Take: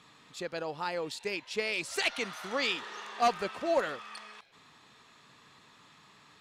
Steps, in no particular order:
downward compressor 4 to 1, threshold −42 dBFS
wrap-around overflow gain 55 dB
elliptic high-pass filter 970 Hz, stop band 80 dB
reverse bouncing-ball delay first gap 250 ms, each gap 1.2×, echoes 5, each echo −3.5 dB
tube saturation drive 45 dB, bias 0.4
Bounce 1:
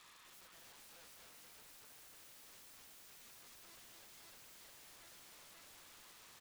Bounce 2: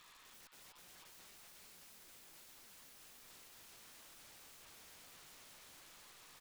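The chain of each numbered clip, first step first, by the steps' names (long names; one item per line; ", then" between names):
reverse bouncing-ball delay, then tube saturation, then elliptic high-pass filter, then wrap-around overflow, then downward compressor
reverse bouncing-ball delay, then downward compressor, then elliptic high-pass filter, then tube saturation, then wrap-around overflow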